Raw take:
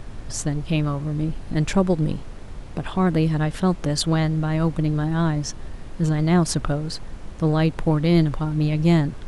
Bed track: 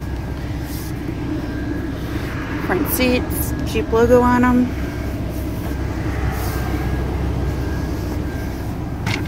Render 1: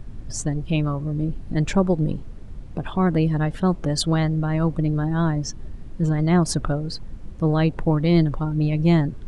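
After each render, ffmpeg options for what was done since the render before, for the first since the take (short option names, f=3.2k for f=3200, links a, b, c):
-af "afftdn=nr=11:nf=-36"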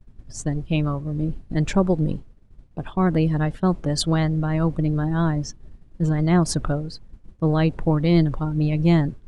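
-af "agate=range=-33dB:threshold=-23dB:ratio=3:detection=peak"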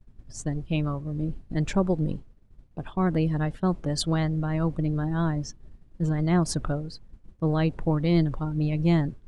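-af "volume=-4.5dB"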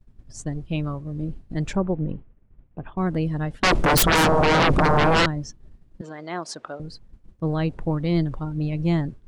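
-filter_complex "[0:a]asettb=1/sr,asplit=3[a][b][c];[a]atrim=end=1.764[d];[b]atrim=start=1.76:end=2.97,asetpts=PTS-STARTPTS,afade=t=in:d=0.004:c=qsin,afade=t=out:st=1.206:d=0.004:c=qsin,lowpass=f=2.7k:w=0.5412,lowpass=f=2.7k:w=1.3066[e];[c]atrim=start=2.966[f];[d][e]acrossfade=d=0.004:c1=hsin:c2=qsin[g];[g][f]acrossfade=d=0.004:c1=qsin:c2=hsin,asettb=1/sr,asplit=3[h][i][j];[h]atrim=end=3.634[k];[i]atrim=start=3.63:end=5.26,asetpts=PTS-STARTPTS,afade=t=in:d=0.004:c=qsin,afade=t=out:st=1.626:d=0.004:c=qsin,aeval=exprs='0.2*sin(PI/2*7.94*val(0)/0.2)':c=same[l];[j]atrim=start=5.256[m];[k][l]acrossfade=d=0.004:c1=hsin:c2=qsin[n];[n][m]acrossfade=d=0.004:c1=qsin:c2=hsin,asettb=1/sr,asplit=3[o][p][q];[o]atrim=end=6.014[r];[p]atrim=start=6.01:end=6.8,asetpts=PTS-STARTPTS,afade=t=in:d=0.004:c=qsin,afade=t=out:st=0.786:d=0.004:c=qsin,highpass=490,lowpass=6.2k[s];[q]atrim=start=6.796[t];[r][s]acrossfade=d=0.004:c1=hsin:c2=qsin[u];[u][t]acrossfade=d=0.004:c1=qsin:c2=hsin"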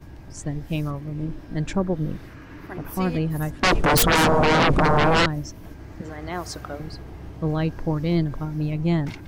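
-filter_complex "[1:a]volume=-17.5dB[a];[0:a][a]amix=inputs=2:normalize=0"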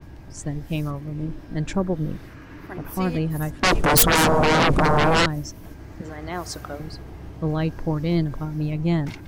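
-af "adynamicequalizer=threshold=0.01:dfrequency=5900:dqfactor=0.7:tfrequency=5900:tqfactor=0.7:attack=5:release=100:ratio=0.375:range=3:mode=boostabove:tftype=highshelf"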